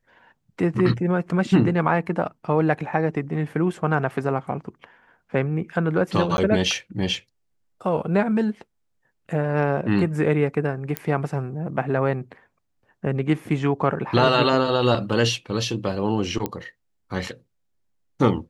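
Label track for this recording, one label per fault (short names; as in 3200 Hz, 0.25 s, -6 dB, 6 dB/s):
6.370000	6.380000	gap 11 ms
10.970000	10.970000	pop -9 dBFS
16.460000	16.460000	pop -12 dBFS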